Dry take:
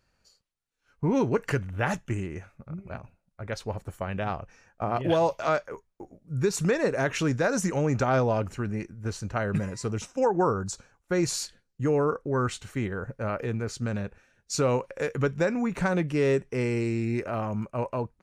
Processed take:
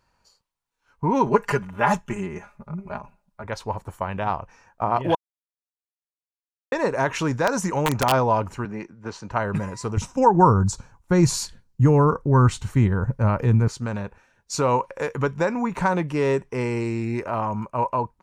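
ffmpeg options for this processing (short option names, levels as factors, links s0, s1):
-filter_complex "[0:a]asettb=1/sr,asplit=3[s0][s1][s2];[s0]atrim=end=1.264[s3];[s1]atrim=start=1.26:end=3.44,asetpts=PTS-STARTPTS,afade=t=in:d=0.004:c=qsin,afade=t=out:st=2.176:d=0.004:c=qsin,aecho=1:1:4.9:0.82,atrim=end_sample=96138[s4];[s2]atrim=start=3.436[s5];[s3][s4]acrossfade=d=0.004:c1=hsin:c2=qsin[s6];[s6][s5]acrossfade=d=0.004:c1=qsin:c2=hsin,asettb=1/sr,asplit=3[s7][s8][s9];[s7]atrim=end=7.474[s10];[s8]atrim=start=7.47:end=8.12,asetpts=PTS-STARTPTS,afade=t=in:d=0.004:c=qsin,afade=t=out:st=0.646:d=0.004:c=qsin,aeval=exprs='(mod(5.96*val(0)+1,2)-1)/5.96':c=same[s11];[s9]atrim=start=8.116[s12];[s10][s11]acrossfade=d=0.004:c1=hsin:c2=qsin[s13];[s13][s12]acrossfade=d=0.004:c1=qsin:c2=hsin,asettb=1/sr,asplit=3[s14][s15][s16];[s14]atrim=end=8.654[s17];[s15]atrim=start=8.65:end=9.31,asetpts=PTS-STARTPTS,afade=t=in:d=0.004:c=qsin,afade=t=out:st=0.656:d=0.004:c=qsin,acrossover=split=160 6500:gain=0.2 1 0.112[s18][s19][s20];[s18][s19][s20]amix=inputs=3:normalize=0[s21];[s16]atrim=start=9.306[s22];[s17][s21]acrossfade=d=0.004:c1=hsin:c2=qsin[s23];[s23][s22]acrossfade=d=0.004:c1=qsin:c2=hsin,asettb=1/sr,asplit=3[s24][s25][s26];[s24]atrim=end=9.974[s27];[s25]atrim=start=9.97:end=13.68,asetpts=PTS-STARTPTS,afade=t=in:d=0.004:c=qsin,afade=t=out:st=3.706:d=0.004:c=qsin,bass=f=250:g=14,treble=f=4000:g=3[s28];[s26]atrim=start=13.676[s29];[s27][s28]acrossfade=d=0.004:c1=hsin:c2=qsin[s30];[s30][s29]acrossfade=d=0.004:c1=qsin:c2=hsin,asplit=3[s31][s32][s33];[s31]atrim=end=5.15,asetpts=PTS-STARTPTS,afade=t=out:st=5.146:d=0.004:c=hsin[s34];[s32]atrim=start=5.15:end=6.72,asetpts=PTS-STARTPTS,volume=0[s35];[s33]atrim=start=6.72,asetpts=PTS-STARTPTS,afade=t=in:d=0.004:c=hsin[s36];[s34][s35][s36]concat=n=3:v=0:a=1,equalizer=f=960:t=o:w=0.45:g=13,volume=1.19"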